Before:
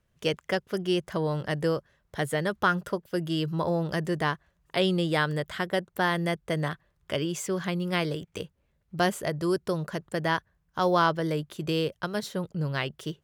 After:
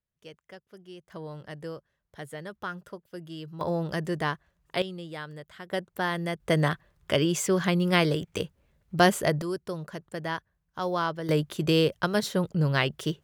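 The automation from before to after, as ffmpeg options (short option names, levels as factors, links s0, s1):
-af "asetnsamples=n=441:p=0,asendcmd='1.1 volume volume -11.5dB;3.61 volume volume -1.5dB;4.82 volume volume -13dB;5.7 volume volume -3dB;6.4 volume volume 5dB;9.42 volume volume -5.5dB;11.29 volume volume 5dB',volume=0.106"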